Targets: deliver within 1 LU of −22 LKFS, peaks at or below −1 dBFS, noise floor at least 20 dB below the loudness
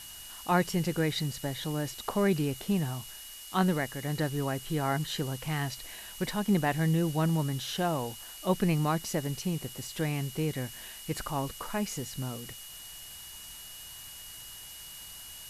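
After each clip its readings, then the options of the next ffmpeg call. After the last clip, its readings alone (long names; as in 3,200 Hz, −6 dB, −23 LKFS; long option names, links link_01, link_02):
interfering tone 2,900 Hz; level of the tone −49 dBFS; background noise floor −46 dBFS; target noise floor −52 dBFS; integrated loudness −31.5 LKFS; sample peak −12.5 dBFS; target loudness −22.0 LKFS
→ -af "bandreject=frequency=2900:width=30"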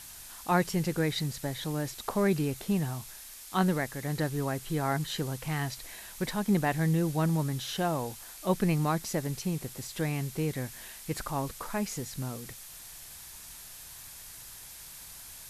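interfering tone none found; background noise floor −47 dBFS; target noise floor −52 dBFS
→ -af "afftdn=noise_reduction=6:noise_floor=-47"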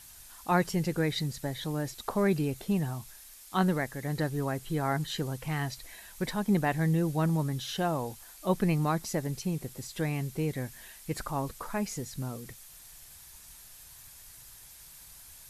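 background noise floor −52 dBFS; integrated loudness −31.5 LKFS; sample peak −13.0 dBFS; target loudness −22.0 LKFS
→ -af "volume=9.5dB"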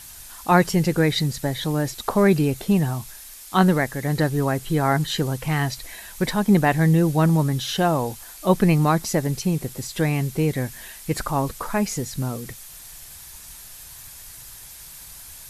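integrated loudness −22.0 LKFS; sample peak −3.5 dBFS; background noise floor −42 dBFS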